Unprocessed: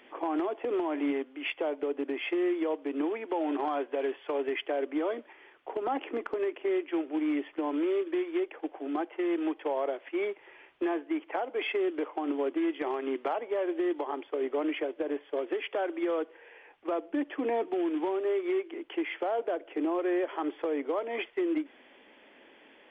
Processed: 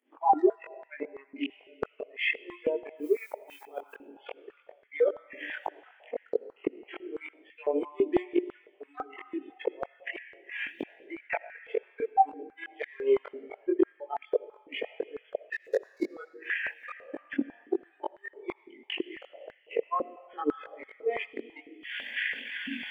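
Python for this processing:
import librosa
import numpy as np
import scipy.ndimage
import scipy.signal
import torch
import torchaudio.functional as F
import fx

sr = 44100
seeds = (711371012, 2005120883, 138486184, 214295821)

y = fx.median_filter(x, sr, points=15, at=(15.52, 16.1), fade=0.02)
y = fx.recorder_agc(y, sr, target_db=-28.0, rise_db_per_s=54.0, max_gain_db=30)
y = fx.lowpass(y, sr, hz=2600.0, slope=12, at=(0.95, 1.37), fade=0.02)
y = fx.noise_reduce_blind(y, sr, reduce_db=28)
y = fx.transient(y, sr, attack_db=8, sustain_db=-10)
y = fx.dmg_noise_colour(y, sr, seeds[0], colour='violet', level_db=-57.0, at=(2.94, 3.92), fade=0.02)
y = fx.gate_flip(y, sr, shuts_db=-21.0, range_db=-41)
y = fx.rev_freeverb(y, sr, rt60_s=1.9, hf_ratio=0.9, predelay_ms=40, drr_db=14.5)
y = fx.chorus_voices(y, sr, voices=2, hz=0.36, base_ms=21, depth_ms=1.0, mix_pct=50)
y = fx.filter_held_highpass(y, sr, hz=6.0, low_hz=270.0, high_hz=1800.0)
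y = F.gain(torch.from_numpy(y), 3.0).numpy()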